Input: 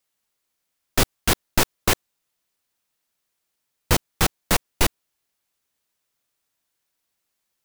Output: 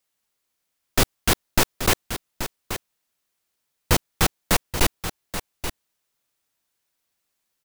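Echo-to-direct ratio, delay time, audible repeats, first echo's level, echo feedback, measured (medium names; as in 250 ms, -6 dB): -10.5 dB, 830 ms, 1, -10.5 dB, no regular repeats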